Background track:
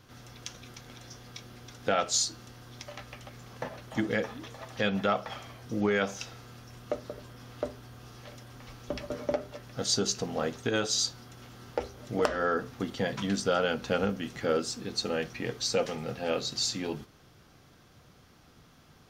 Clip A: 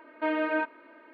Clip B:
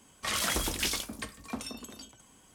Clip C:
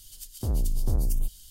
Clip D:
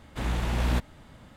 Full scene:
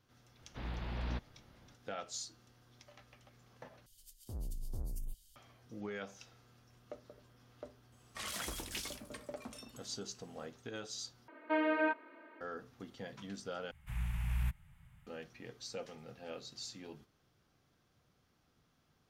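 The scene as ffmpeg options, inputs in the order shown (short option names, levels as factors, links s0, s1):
-filter_complex "[4:a]asplit=2[s0][s1];[0:a]volume=0.158[s2];[s0]aresample=11025,aresample=44100[s3];[s1]firequalizer=gain_entry='entry(160,0);entry(250,-26);entry(430,-29);entry(820,-12);entry(2400,-2);entry(4000,-16);entry(5700,-12);entry(11000,2)':delay=0.05:min_phase=1[s4];[s2]asplit=4[s5][s6][s7][s8];[s5]atrim=end=3.864[s9];[3:a]atrim=end=1.5,asetpts=PTS-STARTPTS,volume=0.158[s10];[s6]atrim=start=5.356:end=11.284[s11];[1:a]atrim=end=1.13,asetpts=PTS-STARTPTS,volume=0.631[s12];[s7]atrim=start=12.406:end=13.714[s13];[s4]atrim=end=1.36,asetpts=PTS-STARTPTS,volume=0.398[s14];[s8]atrim=start=15.066[s15];[s3]atrim=end=1.36,asetpts=PTS-STARTPTS,volume=0.224,afade=t=in:d=0.004:c=hsin,afade=t=out:st=1.356:d=0.004:c=hsin,adelay=390[s16];[2:a]atrim=end=2.54,asetpts=PTS-STARTPTS,volume=0.266,afade=t=in:d=0.004:c=hsin,afade=t=out:st=2.536:d=0.004:c=hsin,adelay=7920[s17];[s9][s10]acrossfade=d=0.004:c1=hsin:c2=hsin[s18];[s18][s11]acrossfade=d=0.004:c1=hsin:c2=hsin[s19];[s19][s12]acrossfade=d=0.004:c1=hsin:c2=hsin[s20];[s20][s13]acrossfade=d=0.004:c1=hsin:c2=hsin[s21];[s21][s14]acrossfade=d=0.004:c1=hsin:c2=hsin[s22];[s22][s15]acrossfade=d=0.004:c1=hsin:c2=hsin[s23];[s23][s16][s17]amix=inputs=3:normalize=0"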